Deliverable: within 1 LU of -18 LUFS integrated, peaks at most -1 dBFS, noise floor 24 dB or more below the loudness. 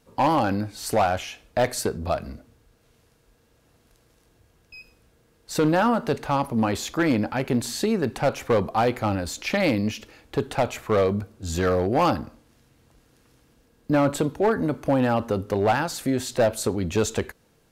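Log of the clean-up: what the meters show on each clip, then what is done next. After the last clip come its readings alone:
clipped samples 1.1%; clipping level -14.5 dBFS; loudness -24.5 LUFS; peak level -14.5 dBFS; loudness target -18.0 LUFS
-> clip repair -14.5 dBFS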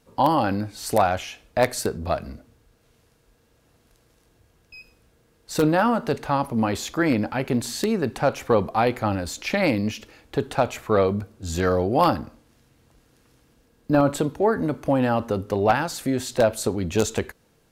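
clipped samples 0.0%; loudness -23.5 LUFS; peak level -5.5 dBFS; loudness target -18.0 LUFS
-> trim +5.5 dB; peak limiter -1 dBFS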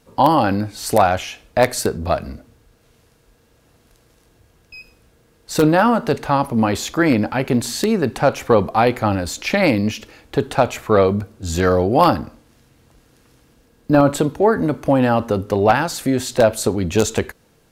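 loudness -18.0 LUFS; peak level -1.0 dBFS; noise floor -57 dBFS

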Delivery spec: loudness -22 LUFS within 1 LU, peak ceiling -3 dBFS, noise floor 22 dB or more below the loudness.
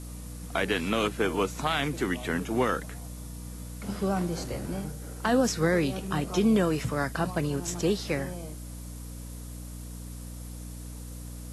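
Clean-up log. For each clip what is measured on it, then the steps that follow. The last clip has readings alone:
hum 60 Hz; highest harmonic 300 Hz; hum level -38 dBFS; noise floor -40 dBFS; noise floor target -51 dBFS; loudness -28.5 LUFS; peak level -13.5 dBFS; loudness target -22.0 LUFS
-> de-hum 60 Hz, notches 5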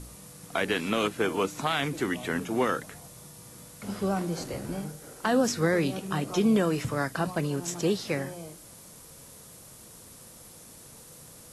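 hum not found; noise floor -50 dBFS; noise floor target -51 dBFS
-> noise reduction 6 dB, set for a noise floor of -50 dBFS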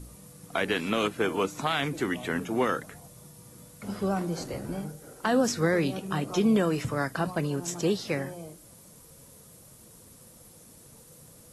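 noise floor -53 dBFS; loudness -28.5 LUFS; peak level -13.5 dBFS; loudness target -22.0 LUFS
-> trim +6.5 dB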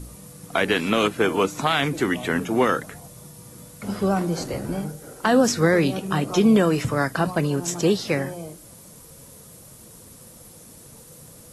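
loudness -22.0 LUFS; peak level -7.0 dBFS; noise floor -46 dBFS

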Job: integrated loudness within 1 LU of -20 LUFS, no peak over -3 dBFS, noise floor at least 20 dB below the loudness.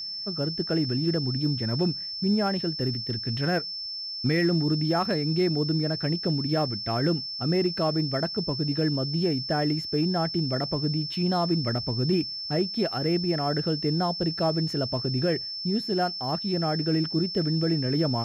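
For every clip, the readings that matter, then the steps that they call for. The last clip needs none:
steady tone 5.3 kHz; tone level -32 dBFS; loudness -26.0 LUFS; peak level -15.0 dBFS; loudness target -20.0 LUFS
-> band-stop 5.3 kHz, Q 30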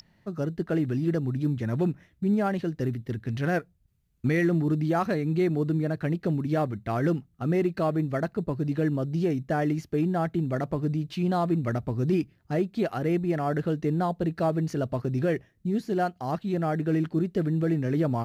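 steady tone not found; loudness -27.5 LUFS; peak level -16.0 dBFS; loudness target -20.0 LUFS
-> trim +7.5 dB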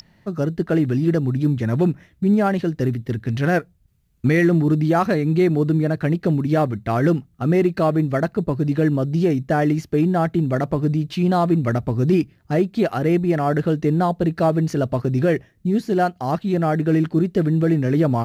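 loudness -20.0 LUFS; peak level -8.5 dBFS; noise floor -58 dBFS

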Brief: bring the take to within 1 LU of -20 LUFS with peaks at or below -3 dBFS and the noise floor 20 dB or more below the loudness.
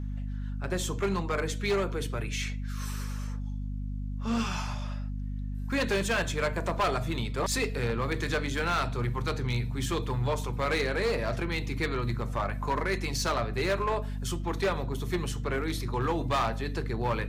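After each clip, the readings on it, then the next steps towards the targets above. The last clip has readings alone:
clipped samples 2.1%; clipping level -22.5 dBFS; hum 50 Hz; highest harmonic 250 Hz; hum level -32 dBFS; loudness -31.0 LUFS; peak level -22.5 dBFS; loudness target -20.0 LUFS
-> clip repair -22.5 dBFS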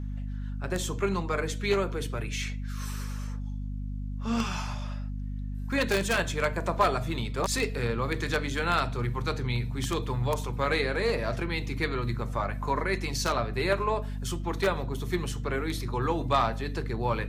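clipped samples 0.0%; hum 50 Hz; highest harmonic 250 Hz; hum level -31 dBFS
-> de-hum 50 Hz, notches 5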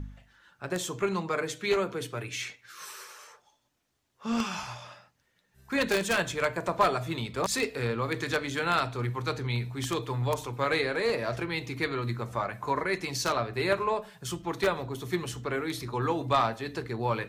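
hum not found; loudness -30.0 LUFS; peak level -12.0 dBFS; loudness target -20.0 LUFS
-> trim +10 dB; peak limiter -3 dBFS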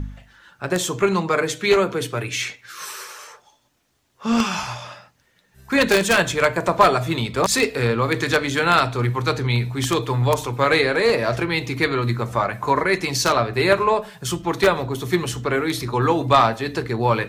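loudness -20.0 LUFS; peak level -3.0 dBFS; noise floor -63 dBFS

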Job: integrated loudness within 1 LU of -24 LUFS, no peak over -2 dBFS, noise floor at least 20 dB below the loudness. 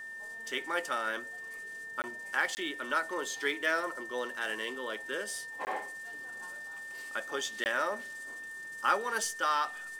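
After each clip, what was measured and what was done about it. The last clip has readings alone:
dropouts 4; longest dropout 19 ms; steady tone 1.8 kHz; tone level -41 dBFS; loudness -34.5 LUFS; peak level -14.5 dBFS; loudness target -24.0 LUFS
-> interpolate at 2.02/2.55/5.65/7.64 s, 19 ms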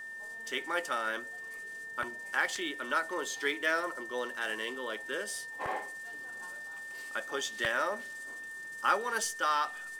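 dropouts 0; steady tone 1.8 kHz; tone level -41 dBFS
-> band-stop 1.8 kHz, Q 30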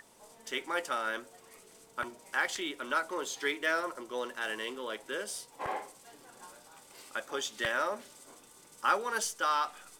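steady tone not found; loudness -34.0 LUFS; peak level -14.5 dBFS; loudness target -24.0 LUFS
-> trim +10 dB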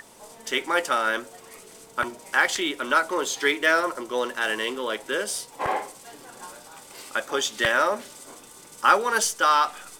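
loudness -24.0 LUFS; peak level -4.5 dBFS; noise floor -48 dBFS

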